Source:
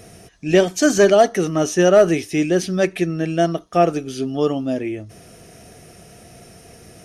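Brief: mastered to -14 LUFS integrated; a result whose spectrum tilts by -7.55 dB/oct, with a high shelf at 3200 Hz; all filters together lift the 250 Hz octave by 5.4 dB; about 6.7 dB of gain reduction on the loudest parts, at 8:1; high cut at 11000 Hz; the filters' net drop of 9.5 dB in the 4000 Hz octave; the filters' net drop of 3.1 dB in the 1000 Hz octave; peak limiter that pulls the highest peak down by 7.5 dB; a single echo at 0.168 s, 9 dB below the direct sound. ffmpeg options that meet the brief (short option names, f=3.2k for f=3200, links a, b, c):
-af "lowpass=11k,equalizer=f=250:t=o:g=8.5,equalizer=f=1k:t=o:g=-6,highshelf=f=3.2k:g=-7,equalizer=f=4k:t=o:g=-8.5,acompressor=threshold=-13dB:ratio=8,alimiter=limit=-13dB:level=0:latency=1,aecho=1:1:168:0.355,volume=7.5dB"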